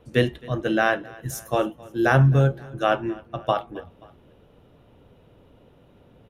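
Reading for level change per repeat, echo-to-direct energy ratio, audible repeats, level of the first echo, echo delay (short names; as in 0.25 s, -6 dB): -5.0 dB, -21.5 dB, 2, -22.5 dB, 0.265 s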